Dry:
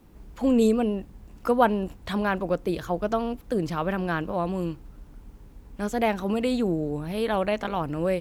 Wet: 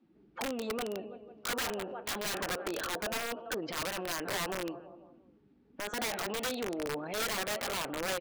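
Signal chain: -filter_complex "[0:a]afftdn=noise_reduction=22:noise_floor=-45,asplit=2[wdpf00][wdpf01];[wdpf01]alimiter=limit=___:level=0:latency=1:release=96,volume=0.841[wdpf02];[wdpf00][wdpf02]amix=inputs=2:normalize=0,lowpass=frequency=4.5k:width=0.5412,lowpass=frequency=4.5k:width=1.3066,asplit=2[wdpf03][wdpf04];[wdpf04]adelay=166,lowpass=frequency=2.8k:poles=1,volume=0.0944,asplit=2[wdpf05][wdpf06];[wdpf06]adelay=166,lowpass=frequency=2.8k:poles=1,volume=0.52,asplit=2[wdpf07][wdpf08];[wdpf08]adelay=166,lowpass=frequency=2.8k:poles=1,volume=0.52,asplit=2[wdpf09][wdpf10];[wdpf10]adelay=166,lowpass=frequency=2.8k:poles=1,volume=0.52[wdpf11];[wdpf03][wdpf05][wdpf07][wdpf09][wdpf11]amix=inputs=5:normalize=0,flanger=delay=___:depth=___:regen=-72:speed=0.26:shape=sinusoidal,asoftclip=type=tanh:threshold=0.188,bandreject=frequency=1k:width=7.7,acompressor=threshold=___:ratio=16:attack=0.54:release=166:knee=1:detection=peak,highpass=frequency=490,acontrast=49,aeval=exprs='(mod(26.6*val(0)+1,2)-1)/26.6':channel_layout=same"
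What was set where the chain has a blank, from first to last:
0.158, 5.3, 9.6, 0.0355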